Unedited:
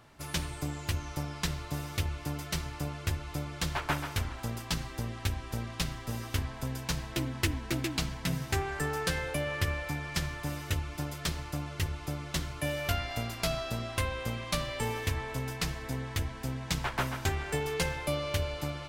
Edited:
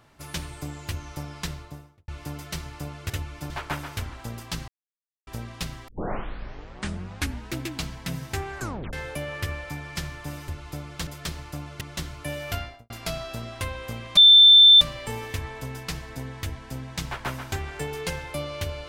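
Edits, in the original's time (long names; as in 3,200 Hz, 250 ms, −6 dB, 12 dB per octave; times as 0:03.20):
0:01.43–0:02.08: fade out and dull
0:03.10–0:03.69: swap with 0:10.67–0:11.07
0:04.87–0:05.46: silence
0:06.07: tape start 1.63 s
0:08.77: tape stop 0.35 s
0:11.81–0:12.18: remove
0:12.94–0:13.27: fade out and dull
0:14.54: insert tone 3,550 Hz −8.5 dBFS 0.64 s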